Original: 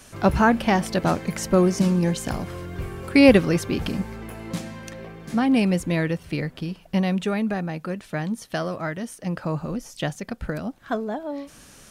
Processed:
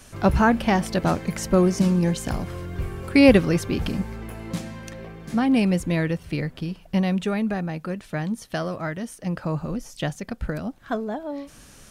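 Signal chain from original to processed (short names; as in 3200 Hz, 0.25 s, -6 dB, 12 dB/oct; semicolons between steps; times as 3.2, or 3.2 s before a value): low shelf 93 Hz +7 dB; gain -1 dB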